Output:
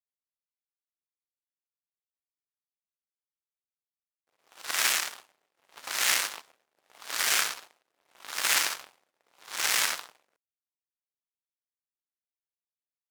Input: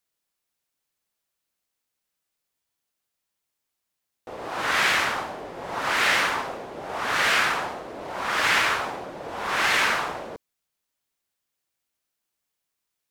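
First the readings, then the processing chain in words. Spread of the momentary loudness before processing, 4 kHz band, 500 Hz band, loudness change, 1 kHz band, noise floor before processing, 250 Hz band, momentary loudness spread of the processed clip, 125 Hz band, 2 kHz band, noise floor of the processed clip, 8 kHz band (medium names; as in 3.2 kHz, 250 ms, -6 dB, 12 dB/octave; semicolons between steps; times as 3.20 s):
16 LU, -2.5 dB, -15.5 dB, -3.5 dB, -12.5 dB, -82 dBFS, -17.0 dB, 15 LU, under -15 dB, -9.0 dB, under -85 dBFS, +6.0 dB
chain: power-law waveshaper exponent 3; saturation -19.5 dBFS, distortion -12 dB; RIAA curve recording; trim +6 dB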